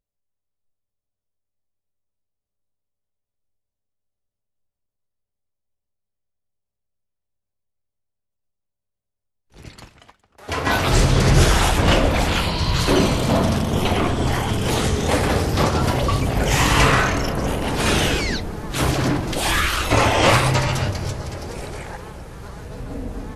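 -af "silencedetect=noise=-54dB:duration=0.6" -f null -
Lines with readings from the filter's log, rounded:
silence_start: 0.00
silence_end: 9.50 | silence_duration: 9.50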